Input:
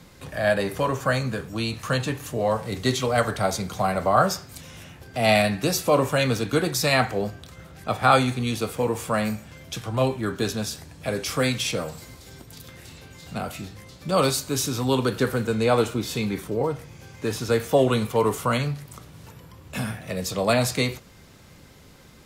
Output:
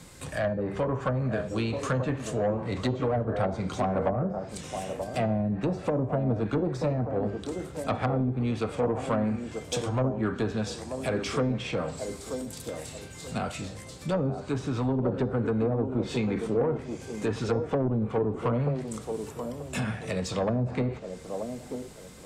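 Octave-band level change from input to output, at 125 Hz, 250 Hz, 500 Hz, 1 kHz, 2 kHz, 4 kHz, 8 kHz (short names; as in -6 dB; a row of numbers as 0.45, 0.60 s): -1.5, -1.5, -4.5, -8.5, -10.5, -12.0, -11.0 dB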